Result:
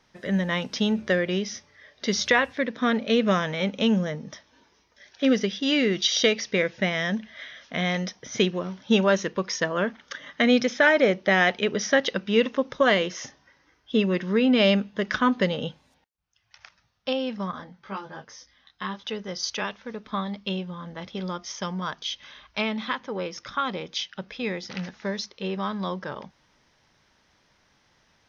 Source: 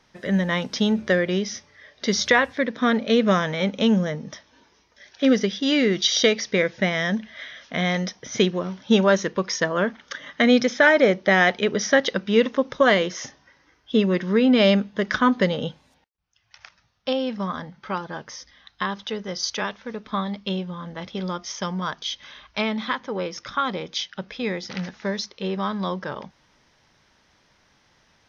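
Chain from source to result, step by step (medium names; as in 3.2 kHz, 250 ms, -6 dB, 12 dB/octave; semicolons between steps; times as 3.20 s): dynamic bell 2.7 kHz, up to +6 dB, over -46 dBFS, Q 5.5; 17.51–19.04 s: detune thickener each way 19 cents; trim -3 dB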